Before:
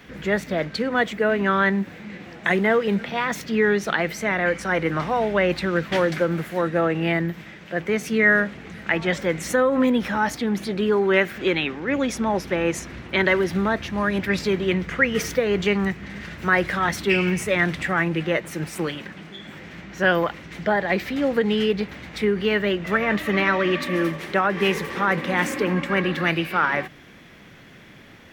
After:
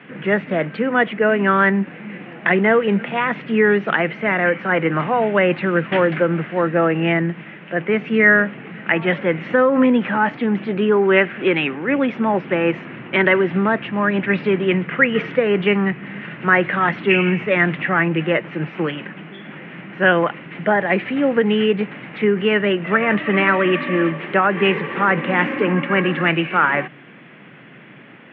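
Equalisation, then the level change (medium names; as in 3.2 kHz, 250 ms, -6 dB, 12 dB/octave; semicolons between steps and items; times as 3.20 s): Chebyshev band-pass 130–2900 Hz, order 4; +5.0 dB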